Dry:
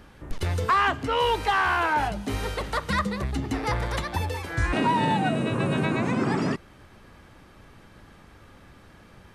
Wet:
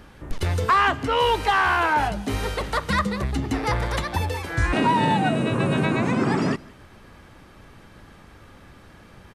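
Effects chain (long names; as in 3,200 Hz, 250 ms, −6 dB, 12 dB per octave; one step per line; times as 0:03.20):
single-tap delay 167 ms −24 dB
level +3 dB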